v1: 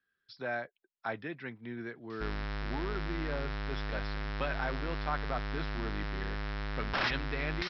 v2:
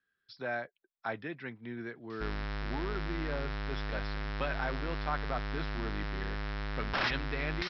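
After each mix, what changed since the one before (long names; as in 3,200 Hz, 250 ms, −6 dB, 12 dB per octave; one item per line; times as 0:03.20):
nothing changed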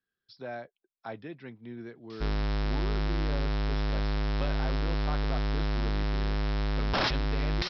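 background +8.5 dB
master: add parametric band 1,700 Hz −8.5 dB 1.5 octaves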